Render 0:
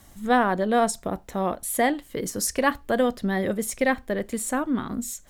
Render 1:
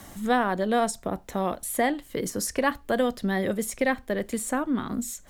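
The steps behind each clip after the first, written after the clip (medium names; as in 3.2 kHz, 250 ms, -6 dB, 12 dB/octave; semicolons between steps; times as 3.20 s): three bands compressed up and down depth 40%; trim -2 dB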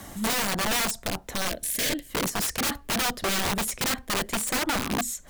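Chebyshev shaper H 7 -28 dB, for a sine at -9 dBFS; integer overflow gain 26.5 dB; time-frequency box 1.49–2.08 s, 710–1500 Hz -13 dB; trim +6 dB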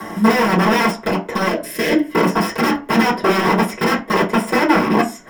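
reverberation RT60 0.35 s, pre-delay 3 ms, DRR -5.5 dB; tape noise reduction on one side only encoder only; trim -7 dB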